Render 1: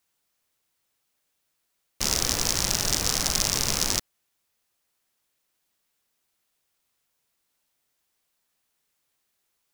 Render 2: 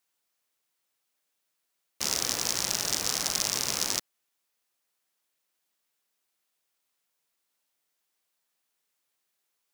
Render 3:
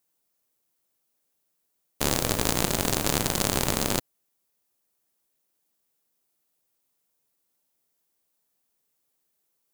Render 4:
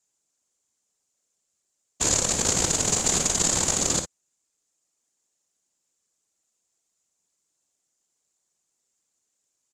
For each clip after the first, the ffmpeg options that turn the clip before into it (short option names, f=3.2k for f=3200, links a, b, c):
-af "highpass=f=270:p=1,volume=-3.5dB"
-af "crystalizer=i=3:c=0,aeval=exprs='1.78*(cos(1*acos(clip(val(0)/1.78,-1,1)))-cos(1*PI/2))+0.501*(cos(4*acos(clip(val(0)/1.78,-1,1)))-cos(4*PI/2))+0.2*(cos(6*acos(clip(val(0)/1.78,-1,1)))-cos(6*PI/2))+0.562*(cos(7*acos(clip(val(0)/1.78,-1,1)))-cos(7*PI/2))':c=same,tiltshelf=f=970:g=9.5,volume=-2.5dB"
-filter_complex "[0:a]lowpass=f=7.1k:t=q:w=5.5,afftfilt=real='hypot(re,im)*cos(2*PI*random(0))':imag='hypot(re,im)*sin(2*PI*random(1))':win_size=512:overlap=0.75,asplit=2[a][b];[b]aecho=0:1:47|59:0.251|0.282[c];[a][c]amix=inputs=2:normalize=0,volume=3.5dB"